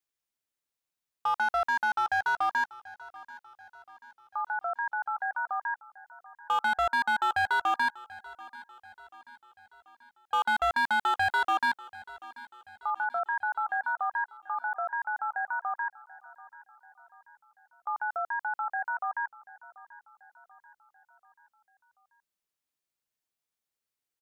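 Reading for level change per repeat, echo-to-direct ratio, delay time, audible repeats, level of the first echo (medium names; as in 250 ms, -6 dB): -6.0 dB, -18.0 dB, 736 ms, 3, -19.5 dB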